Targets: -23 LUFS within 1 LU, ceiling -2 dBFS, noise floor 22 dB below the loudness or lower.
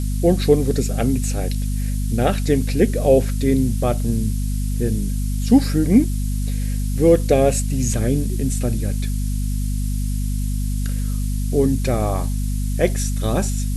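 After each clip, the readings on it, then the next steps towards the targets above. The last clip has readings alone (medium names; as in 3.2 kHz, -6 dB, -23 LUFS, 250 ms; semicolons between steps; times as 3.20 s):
hum 50 Hz; highest harmonic 250 Hz; hum level -19 dBFS; noise floor -22 dBFS; noise floor target -43 dBFS; loudness -20.5 LUFS; peak level -2.0 dBFS; loudness target -23.0 LUFS
-> de-hum 50 Hz, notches 5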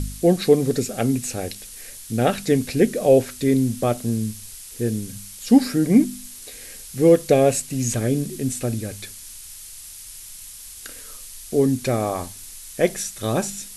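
hum not found; noise floor -40 dBFS; noise floor target -43 dBFS
-> noise reduction 6 dB, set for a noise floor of -40 dBFS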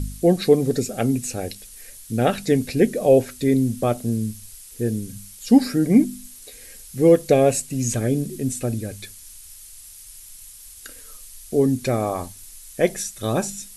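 noise floor -43 dBFS; loudness -21.0 LUFS; peak level -3.5 dBFS; loudness target -23.0 LUFS
-> trim -2 dB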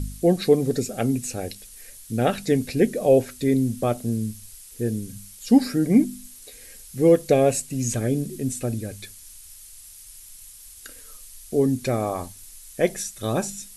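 loudness -23.0 LUFS; peak level -5.5 dBFS; noise floor -45 dBFS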